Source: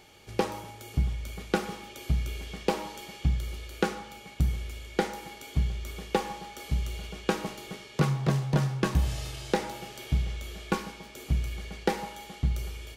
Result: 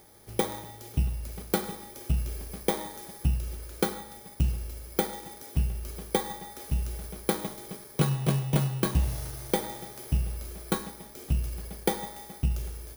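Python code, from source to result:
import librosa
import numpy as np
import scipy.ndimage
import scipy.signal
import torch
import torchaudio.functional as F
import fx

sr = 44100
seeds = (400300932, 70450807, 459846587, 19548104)

y = fx.bit_reversed(x, sr, seeds[0], block=16)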